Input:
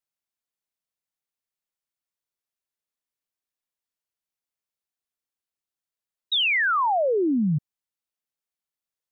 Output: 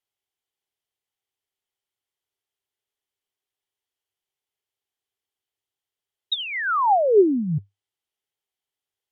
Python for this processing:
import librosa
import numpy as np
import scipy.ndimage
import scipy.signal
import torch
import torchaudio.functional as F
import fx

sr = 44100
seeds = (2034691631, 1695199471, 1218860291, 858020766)

y = fx.graphic_eq_31(x, sr, hz=(100, 200, 400, 800, 2000, 3150), db=(11, -6, 11, 7, 4, 10))
y = fx.env_lowpass_down(y, sr, base_hz=1200.0, full_db=-16.0)